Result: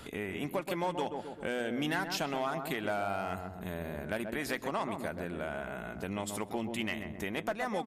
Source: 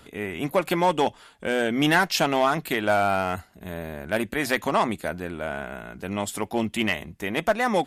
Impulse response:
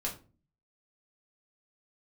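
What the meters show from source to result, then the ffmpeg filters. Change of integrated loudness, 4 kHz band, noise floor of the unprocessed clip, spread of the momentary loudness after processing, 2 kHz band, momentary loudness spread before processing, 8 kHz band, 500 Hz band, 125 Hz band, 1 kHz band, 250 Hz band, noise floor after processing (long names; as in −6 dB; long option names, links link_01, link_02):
−10.5 dB, −11.0 dB, −54 dBFS, 6 LU, −11.0 dB, 13 LU, −9.5 dB, −10.5 dB, −8.5 dB, −11.5 dB, −9.5 dB, −46 dBFS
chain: -filter_complex "[0:a]asplit=2[link_01][link_02];[link_02]adelay=130,lowpass=frequency=890:poles=1,volume=-6dB,asplit=2[link_03][link_04];[link_04]adelay=130,lowpass=frequency=890:poles=1,volume=0.4,asplit=2[link_05][link_06];[link_06]adelay=130,lowpass=frequency=890:poles=1,volume=0.4,asplit=2[link_07][link_08];[link_08]adelay=130,lowpass=frequency=890:poles=1,volume=0.4,asplit=2[link_09][link_10];[link_10]adelay=130,lowpass=frequency=890:poles=1,volume=0.4[link_11];[link_03][link_05][link_07][link_09][link_11]amix=inputs=5:normalize=0[link_12];[link_01][link_12]amix=inputs=2:normalize=0,acompressor=threshold=-41dB:ratio=2.5,volume=2.5dB"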